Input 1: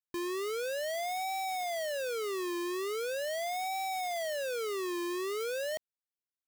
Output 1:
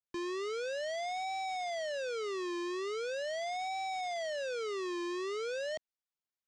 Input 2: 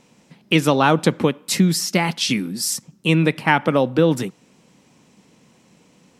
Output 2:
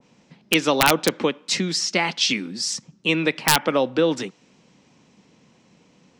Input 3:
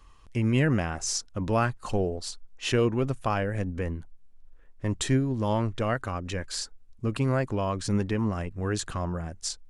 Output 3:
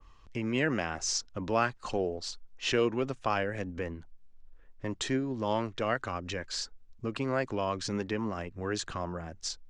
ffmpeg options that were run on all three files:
-filter_complex "[0:a]lowpass=f=6.7k:w=0.5412,lowpass=f=6.7k:w=1.3066,acrossover=split=230[a][b];[a]acompressor=threshold=-39dB:ratio=6[c];[b]aeval=exprs='(mod(1.88*val(0)+1,2)-1)/1.88':c=same[d];[c][d]amix=inputs=2:normalize=0,adynamicequalizer=threshold=0.0224:dfrequency=1700:dqfactor=0.7:tfrequency=1700:tqfactor=0.7:attack=5:release=100:ratio=0.375:range=2:mode=boostabove:tftype=highshelf,volume=-2dB"

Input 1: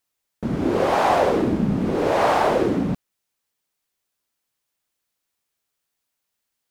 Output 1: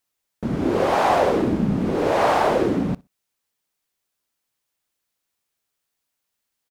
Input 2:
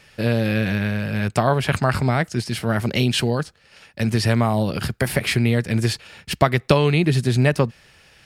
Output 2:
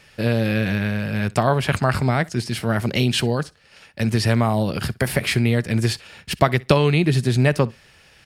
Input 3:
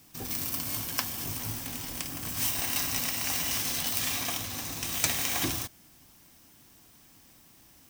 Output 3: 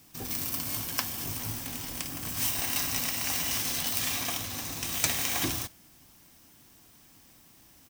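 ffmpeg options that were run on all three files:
-af "aecho=1:1:62|124:0.0631|0.0101"

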